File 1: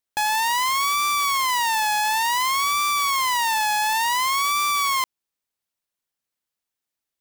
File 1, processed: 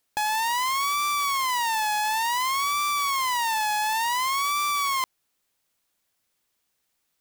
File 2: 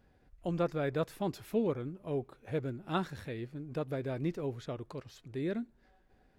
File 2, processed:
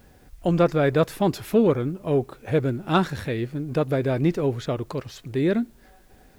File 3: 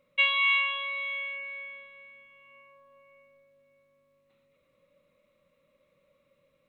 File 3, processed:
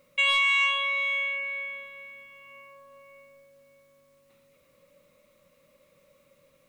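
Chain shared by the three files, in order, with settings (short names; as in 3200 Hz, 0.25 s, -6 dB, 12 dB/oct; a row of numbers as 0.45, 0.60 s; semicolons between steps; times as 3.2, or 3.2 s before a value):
in parallel at 0 dB: negative-ratio compressor -27 dBFS, ratio -0.5; on the sum: requantised 12-bit, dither triangular; soft clip -13.5 dBFS; match loudness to -24 LUFS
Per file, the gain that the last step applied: -5.0, +7.0, -1.0 dB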